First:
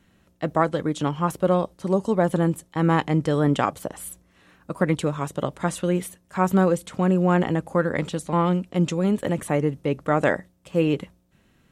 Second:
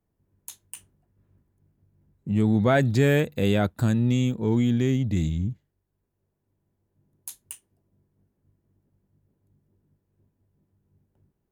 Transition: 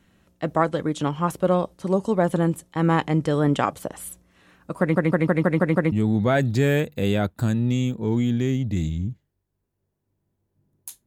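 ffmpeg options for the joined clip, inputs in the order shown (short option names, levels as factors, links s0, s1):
-filter_complex "[0:a]apad=whole_dur=11.06,atrim=end=11.06,asplit=7[s0][s1][s2][s3][s4][s5][s6];[s0]atrim=end=4.962[s7];[s1]atrim=start=4.798:end=4.962[s8];[s2]atrim=start=4.798:end=4.962[s9];[s3]atrim=start=4.798:end=4.962[s10];[s4]atrim=start=4.798:end=4.962[s11];[s5]atrim=start=4.798:end=4.962[s12];[s6]atrim=start=4.798:end=4.962[s13];[1:a]atrim=start=2.318:end=7.46[s14];[s7][s8]acrossfade=d=0.004:c1=hsin:c2=hsin[s15];[s15][s9]acrossfade=d=0.004:c1=hsin:c2=hsin[s16];[s16][s10]acrossfade=d=0.004:c1=hsin:c2=hsin[s17];[s17][s11]acrossfade=d=0.004:c1=hsin:c2=hsin[s18];[s18][s12]acrossfade=d=0.004:c1=hsin:c2=hsin[s19];[s19][s13]acrossfade=d=0.004:c1=hsin:c2=hsin[s20];[s20][s14]acrossfade=d=0.004:c1=hsin:c2=hsin"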